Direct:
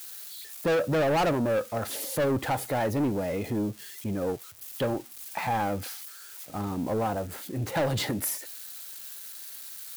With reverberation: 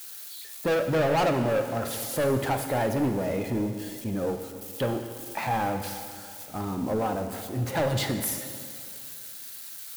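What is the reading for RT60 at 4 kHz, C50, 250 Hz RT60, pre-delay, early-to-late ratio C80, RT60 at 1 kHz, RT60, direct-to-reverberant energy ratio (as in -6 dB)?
2.3 s, 7.5 dB, 2.4 s, 5 ms, 8.5 dB, 2.4 s, 2.4 s, 6.0 dB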